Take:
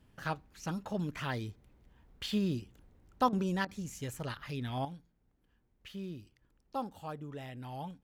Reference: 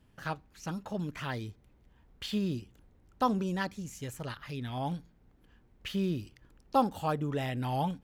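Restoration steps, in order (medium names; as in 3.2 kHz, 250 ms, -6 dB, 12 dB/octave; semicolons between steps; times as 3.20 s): interpolate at 3.29/3.65 s, 36 ms; gain correction +11 dB, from 4.85 s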